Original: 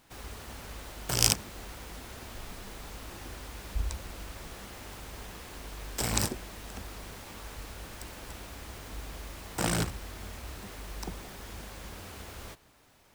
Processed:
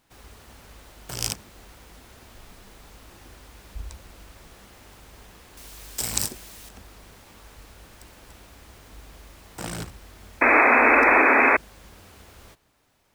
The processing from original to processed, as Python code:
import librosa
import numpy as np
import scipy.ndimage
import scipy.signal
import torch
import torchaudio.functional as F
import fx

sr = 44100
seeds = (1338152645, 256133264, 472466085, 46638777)

y = fx.high_shelf(x, sr, hz=3400.0, db=12.0, at=(5.57, 6.69))
y = fx.spec_paint(y, sr, seeds[0], shape='noise', start_s=10.41, length_s=1.16, low_hz=230.0, high_hz=2600.0, level_db=-12.0)
y = y * librosa.db_to_amplitude(-4.5)